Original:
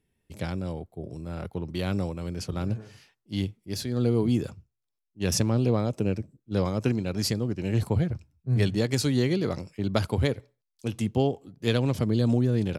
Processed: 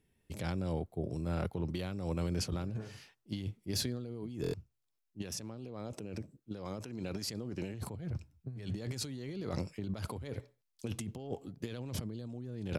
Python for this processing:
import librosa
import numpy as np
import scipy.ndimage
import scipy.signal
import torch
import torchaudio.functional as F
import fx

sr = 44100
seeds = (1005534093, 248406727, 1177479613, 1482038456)

y = fx.over_compress(x, sr, threshold_db=-33.0, ratio=-1.0)
y = fx.low_shelf(y, sr, hz=140.0, db=-8.0, at=(5.22, 7.74))
y = fx.buffer_glitch(y, sr, at_s=(4.42,), block=1024, repeats=4)
y = y * 10.0 ** (-5.5 / 20.0)